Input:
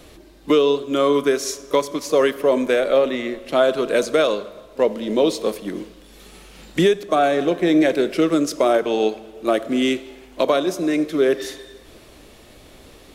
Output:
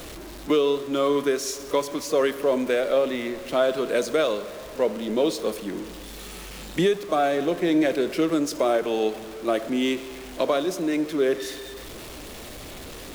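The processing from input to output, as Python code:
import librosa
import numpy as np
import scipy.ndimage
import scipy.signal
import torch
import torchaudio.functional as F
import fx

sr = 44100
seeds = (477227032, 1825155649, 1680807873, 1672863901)

y = x + 0.5 * 10.0 ** (-29.5 / 20.0) * np.sign(x)
y = y * librosa.db_to_amplitude(-5.5)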